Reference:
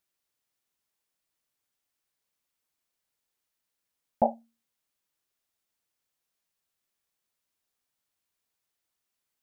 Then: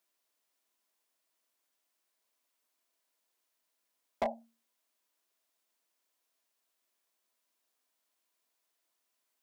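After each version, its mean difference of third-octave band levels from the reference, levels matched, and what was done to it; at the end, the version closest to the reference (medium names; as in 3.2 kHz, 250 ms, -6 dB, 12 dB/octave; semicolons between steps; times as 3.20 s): 7.0 dB: steep high-pass 220 Hz 36 dB/octave; compression 12:1, threshold -26 dBFS, peak gain reduction 9.5 dB; overload inside the chain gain 30.5 dB; small resonant body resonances 650/1000 Hz, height 7 dB; trim +2 dB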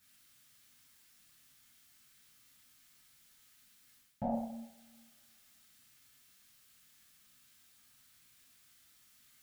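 12.0 dB: high-order bell 620 Hz -9.5 dB; reverse; compression 6:1, threshold -41 dBFS, peak gain reduction 15.5 dB; reverse; peak limiter -42 dBFS, peak gain reduction 11.5 dB; two-slope reverb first 0.69 s, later 2.1 s, from -24 dB, DRR -8.5 dB; trim +9.5 dB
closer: first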